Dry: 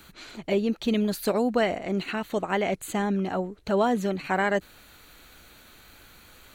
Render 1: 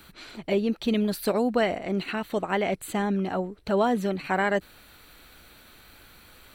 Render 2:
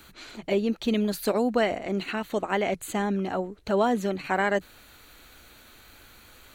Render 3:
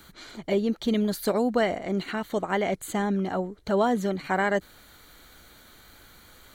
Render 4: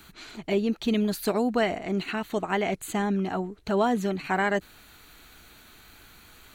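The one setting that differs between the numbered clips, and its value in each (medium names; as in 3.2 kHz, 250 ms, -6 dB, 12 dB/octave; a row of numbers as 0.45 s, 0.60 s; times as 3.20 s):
band-stop, frequency: 6.7 kHz, 170 Hz, 2.6 kHz, 540 Hz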